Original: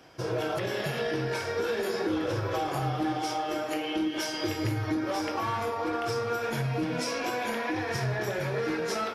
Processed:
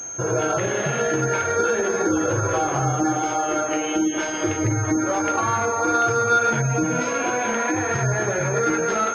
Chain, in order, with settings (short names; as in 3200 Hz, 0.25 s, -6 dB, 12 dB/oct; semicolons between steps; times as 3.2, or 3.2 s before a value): spectral gate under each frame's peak -30 dB strong; small resonant body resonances 1400 Hz, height 11 dB; pulse-width modulation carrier 6400 Hz; gain +7.5 dB